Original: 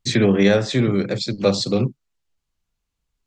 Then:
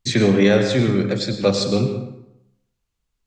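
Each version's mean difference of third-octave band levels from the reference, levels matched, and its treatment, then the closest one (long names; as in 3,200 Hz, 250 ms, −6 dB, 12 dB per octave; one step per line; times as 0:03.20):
4.0 dB: dense smooth reverb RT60 0.83 s, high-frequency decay 0.7×, pre-delay 85 ms, DRR 6.5 dB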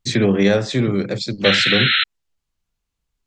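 2.5 dB: sound drawn into the spectrogram noise, 0:01.44–0:02.04, 1,300–4,200 Hz −17 dBFS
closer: second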